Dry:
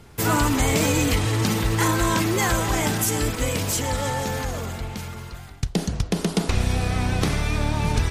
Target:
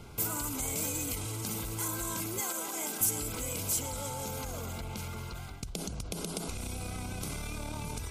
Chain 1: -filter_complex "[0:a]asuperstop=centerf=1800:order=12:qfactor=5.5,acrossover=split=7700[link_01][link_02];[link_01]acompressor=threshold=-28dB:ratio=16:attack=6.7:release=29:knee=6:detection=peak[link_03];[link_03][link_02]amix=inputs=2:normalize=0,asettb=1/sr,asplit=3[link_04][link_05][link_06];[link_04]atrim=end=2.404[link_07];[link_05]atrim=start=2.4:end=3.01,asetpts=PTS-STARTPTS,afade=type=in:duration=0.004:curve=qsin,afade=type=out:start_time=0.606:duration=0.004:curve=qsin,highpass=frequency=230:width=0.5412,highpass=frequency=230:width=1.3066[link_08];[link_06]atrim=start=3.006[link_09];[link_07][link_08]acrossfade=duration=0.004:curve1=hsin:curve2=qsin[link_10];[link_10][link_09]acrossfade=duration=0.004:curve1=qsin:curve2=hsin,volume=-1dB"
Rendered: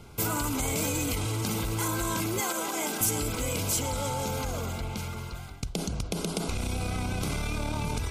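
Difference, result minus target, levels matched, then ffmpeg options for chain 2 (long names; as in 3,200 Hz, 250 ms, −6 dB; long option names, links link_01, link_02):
downward compressor: peak gain reduction −8 dB
-filter_complex "[0:a]asuperstop=centerf=1800:order=12:qfactor=5.5,acrossover=split=7700[link_01][link_02];[link_01]acompressor=threshold=-36.5dB:ratio=16:attack=6.7:release=29:knee=6:detection=peak[link_03];[link_03][link_02]amix=inputs=2:normalize=0,asettb=1/sr,asplit=3[link_04][link_05][link_06];[link_04]atrim=end=2.404[link_07];[link_05]atrim=start=2.4:end=3.01,asetpts=PTS-STARTPTS,afade=type=in:duration=0.004:curve=qsin,afade=type=out:start_time=0.606:duration=0.004:curve=qsin,highpass=frequency=230:width=0.5412,highpass=frequency=230:width=1.3066[link_08];[link_06]atrim=start=3.006[link_09];[link_07][link_08]acrossfade=duration=0.004:curve1=hsin:curve2=qsin[link_10];[link_10][link_09]acrossfade=duration=0.004:curve1=qsin:curve2=hsin,volume=-1dB"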